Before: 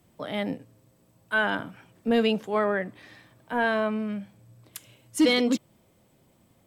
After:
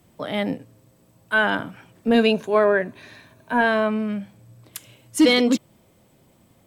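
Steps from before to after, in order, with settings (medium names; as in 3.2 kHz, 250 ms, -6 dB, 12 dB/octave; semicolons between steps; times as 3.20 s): 2.14–3.61 s: rippled EQ curve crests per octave 1.5, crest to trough 8 dB; trim +5 dB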